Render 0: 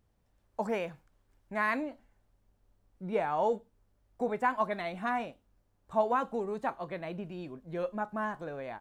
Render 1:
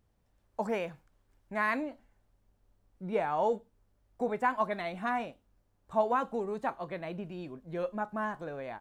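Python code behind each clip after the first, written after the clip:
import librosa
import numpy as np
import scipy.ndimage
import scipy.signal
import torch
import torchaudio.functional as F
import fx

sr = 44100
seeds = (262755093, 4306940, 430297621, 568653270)

y = x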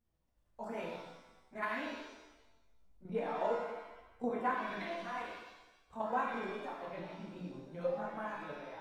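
y = fx.chorus_voices(x, sr, voices=4, hz=0.84, base_ms=13, depth_ms=4.5, mix_pct=70)
y = fx.level_steps(y, sr, step_db=10)
y = fx.rev_shimmer(y, sr, seeds[0], rt60_s=1.0, semitones=7, shimmer_db=-8, drr_db=-2.0)
y = F.gain(torch.from_numpy(y), -4.0).numpy()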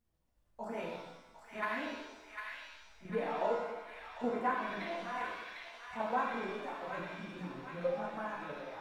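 y = fx.echo_wet_highpass(x, sr, ms=751, feedback_pct=51, hz=1500.0, wet_db=-3)
y = F.gain(torch.from_numpy(y), 1.0).numpy()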